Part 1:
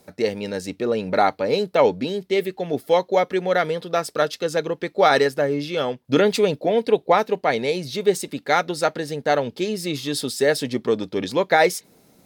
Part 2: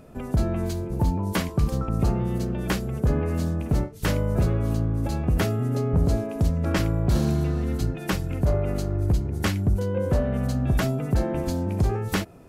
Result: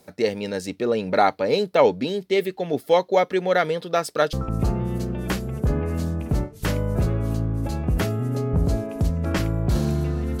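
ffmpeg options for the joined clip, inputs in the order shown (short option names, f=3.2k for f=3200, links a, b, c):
-filter_complex "[0:a]apad=whole_dur=10.4,atrim=end=10.4,atrim=end=4.332[a];[1:a]atrim=start=1.728:end=7.8[b];[a][b]acrossfade=d=0.004:c1=hsin:c2=hsin"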